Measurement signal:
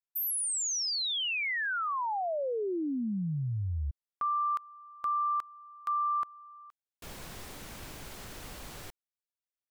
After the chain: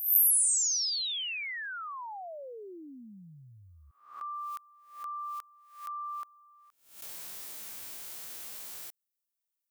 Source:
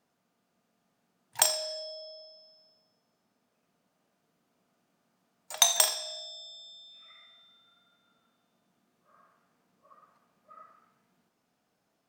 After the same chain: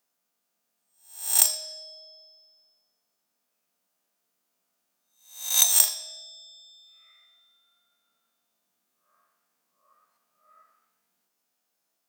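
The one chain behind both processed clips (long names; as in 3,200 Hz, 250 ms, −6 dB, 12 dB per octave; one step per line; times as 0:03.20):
peak hold with a rise ahead of every peak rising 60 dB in 0.51 s
RIAA equalisation recording
level −9 dB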